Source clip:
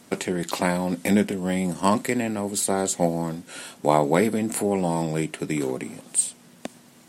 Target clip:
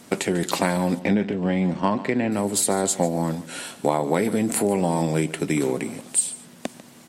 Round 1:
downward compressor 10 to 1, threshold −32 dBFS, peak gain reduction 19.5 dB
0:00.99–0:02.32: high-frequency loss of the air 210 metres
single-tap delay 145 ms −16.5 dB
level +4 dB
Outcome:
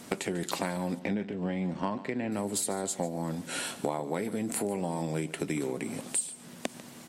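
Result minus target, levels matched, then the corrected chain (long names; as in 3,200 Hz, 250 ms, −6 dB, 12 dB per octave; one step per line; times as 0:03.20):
downward compressor: peak gain reduction +11 dB
downward compressor 10 to 1, threshold −20 dBFS, peak gain reduction 9 dB
0:00.99–0:02.32: high-frequency loss of the air 210 metres
single-tap delay 145 ms −16.5 dB
level +4 dB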